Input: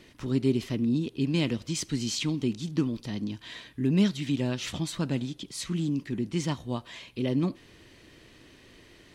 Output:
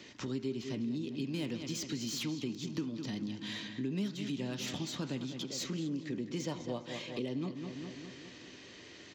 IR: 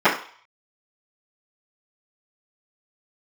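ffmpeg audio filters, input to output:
-filter_complex "[0:a]highpass=110,highshelf=f=3500:g=8,asplit=2[s0][s1];[s1]adelay=203,lowpass=f=4000:p=1,volume=0.266,asplit=2[s2][s3];[s3]adelay=203,lowpass=f=4000:p=1,volume=0.53,asplit=2[s4][s5];[s5]adelay=203,lowpass=f=4000:p=1,volume=0.53,asplit=2[s6][s7];[s7]adelay=203,lowpass=f=4000:p=1,volume=0.53,asplit=2[s8][s9];[s9]adelay=203,lowpass=f=4000:p=1,volume=0.53,asplit=2[s10][s11];[s11]adelay=203,lowpass=f=4000:p=1,volume=0.53[s12];[s0][s2][s4][s6][s8][s10][s12]amix=inputs=7:normalize=0,asplit=2[s13][s14];[1:a]atrim=start_sample=2205[s15];[s14][s15]afir=irnorm=-1:irlink=0,volume=0.0211[s16];[s13][s16]amix=inputs=2:normalize=0,aresample=16000,aresample=44100,acrossover=split=150|880[s17][s18][s19];[s19]asoftclip=type=tanh:threshold=0.0335[s20];[s17][s18][s20]amix=inputs=3:normalize=0,asettb=1/sr,asplit=3[s21][s22][s23];[s21]atrim=end=5.444[s24];[s22]atrim=start=5.44:end=7.25,asetpts=PTS-STARTPTS,afade=t=in:d=0.004:c=qsin,afade=t=out:st=1.806:d=0.004:c=qsin,equalizer=f=510:w=2:g=9.5[s25];[s23]atrim=start=7.246[s26];[s24][s25]acrossfade=d=0.004:c1=hsin:c2=qsin[s27];[s27][s26]acrossfade=d=0.004:c1=qsin:c2=hsin,acompressor=threshold=0.0141:ratio=3"

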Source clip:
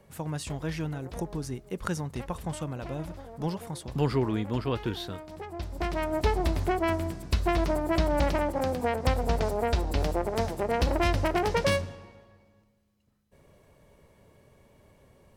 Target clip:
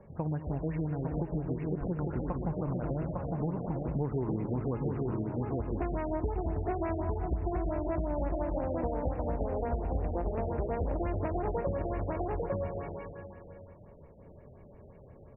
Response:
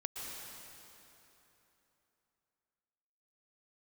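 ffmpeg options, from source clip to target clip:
-filter_complex "[0:a]tiltshelf=f=1500:g=4.5,aecho=1:1:853:0.562,asplit=2[s0][s1];[1:a]atrim=start_sample=2205,asetrate=57330,aresample=44100,adelay=118[s2];[s1][s2]afir=irnorm=-1:irlink=0,volume=0.531[s3];[s0][s3]amix=inputs=2:normalize=0,acompressor=threshold=0.0355:ratio=6,highshelf=f=4800:t=q:w=1.5:g=12.5,afftfilt=real='re*lt(b*sr/1024,770*pow(2900/770,0.5+0.5*sin(2*PI*5.7*pts/sr)))':imag='im*lt(b*sr/1024,770*pow(2900/770,0.5+0.5*sin(2*PI*5.7*pts/sr)))':win_size=1024:overlap=0.75"

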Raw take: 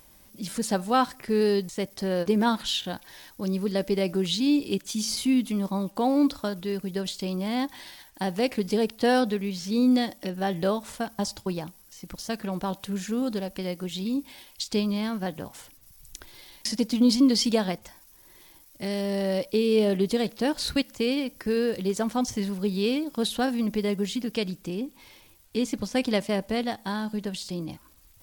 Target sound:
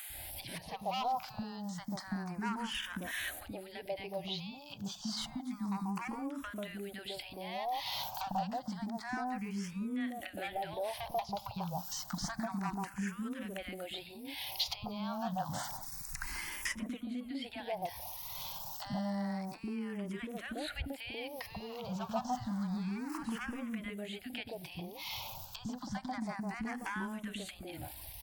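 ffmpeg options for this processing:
-filter_complex "[0:a]asettb=1/sr,asplit=3[s0][s1][s2];[s0]atrim=end=21.504[s3];[s1]atrim=start=21.5:end=23.75,asetpts=PTS-STARTPTS,afade=t=in:d=0.004:c=qsin,afade=t=out:st=2.246:d=0.004:c=qsin,aeval=exprs='val(0)+0.5*0.02*sgn(val(0))':c=same[s4];[s2]atrim=start=23.746[s5];[s3][s4]acrossfade=d=0.004:c1=hsin:c2=qsin[s6];[s6][s5]acrossfade=d=0.004:c1=qsin:c2=hsin,acrossover=split=2700[s7][s8];[s8]acompressor=threshold=0.00355:ratio=4:attack=1:release=60[s9];[s7][s9]amix=inputs=2:normalize=0,equalizer=f=110:t=o:w=2.8:g=8.5,acompressor=threshold=0.0141:ratio=12,lowshelf=f=580:t=q:w=3:g=-8.5,asoftclip=type=hard:threshold=0.0106,acrossover=split=290|920[s10][s11][s12];[s10]adelay=100[s13];[s11]adelay=140[s14];[s13][s14][s12]amix=inputs=3:normalize=0,asplit=2[s15][s16];[s16]afreqshift=0.29[s17];[s15][s17]amix=inputs=2:normalize=1,volume=5.01"

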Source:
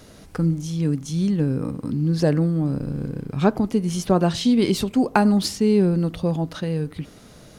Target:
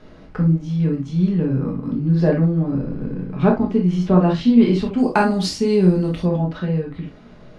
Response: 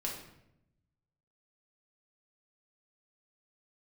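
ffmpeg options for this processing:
-filter_complex "[0:a]asetnsamples=n=441:p=0,asendcmd='4.98 lowpass f 8100;6.25 lowpass f 2500',lowpass=2600[s0];[1:a]atrim=start_sample=2205,atrim=end_sample=3528[s1];[s0][s1]afir=irnorm=-1:irlink=0,volume=1.12"

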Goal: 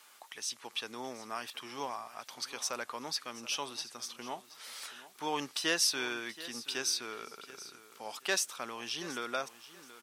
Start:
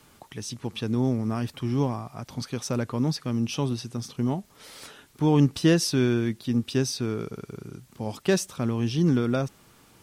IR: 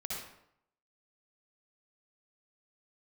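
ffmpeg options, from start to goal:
-filter_complex "[0:a]highpass=930,asplit=2[s0][s1];[s1]aecho=0:1:727|1454:0.15|0.0359[s2];[s0][s2]amix=inputs=2:normalize=0"

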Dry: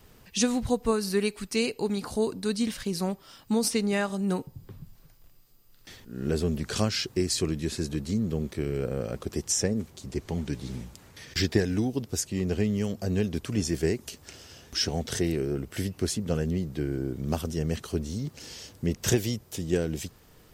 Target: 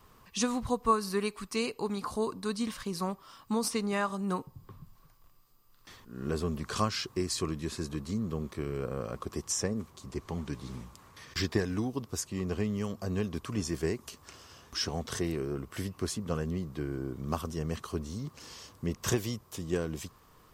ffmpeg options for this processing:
-af "equalizer=f=1100:t=o:w=0.45:g=15,volume=0.531"

